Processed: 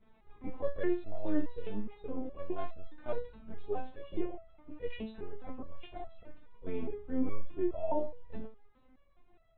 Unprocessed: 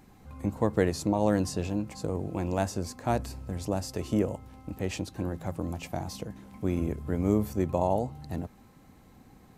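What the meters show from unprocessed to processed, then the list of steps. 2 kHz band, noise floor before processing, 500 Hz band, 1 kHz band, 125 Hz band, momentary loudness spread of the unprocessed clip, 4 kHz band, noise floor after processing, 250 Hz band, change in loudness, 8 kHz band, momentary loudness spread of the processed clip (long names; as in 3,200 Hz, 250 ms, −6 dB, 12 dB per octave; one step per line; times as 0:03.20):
−9.5 dB, −56 dBFS, −7.0 dB, −10.5 dB, −18.0 dB, 11 LU, −14.5 dB, −64 dBFS, −8.5 dB, −9.0 dB, below −35 dB, 14 LU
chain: linear-prediction vocoder at 8 kHz pitch kept
dynamic equaliser 350 Hz, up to +4 dB, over −35 dBFS, Q 0.75
step-sequenced resonator 4.8 Hz 220–660 Hz
level +6.5 dB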